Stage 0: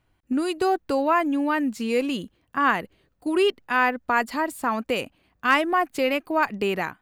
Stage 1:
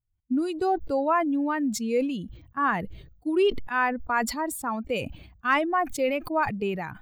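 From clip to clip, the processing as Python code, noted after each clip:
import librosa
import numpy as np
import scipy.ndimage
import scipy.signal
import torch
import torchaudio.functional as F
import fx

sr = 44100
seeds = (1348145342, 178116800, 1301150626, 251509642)

y = fx.bin_expand(x, sr, power=1.5)
y = fx.high_shelf(y, sr, hz=2800.0, db=-10.0)
y = fx.sustainer(y, sr, db_per_s=71.0)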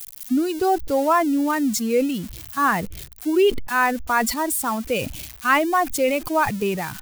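y = x + 0.5 * 10.0 ** (-28.5 / 20.0) * np.diff(np.sign(x), prepend=np.sign(x[:1]))
y = F.gain(torch.from_numpy(y), 5.0).numpy()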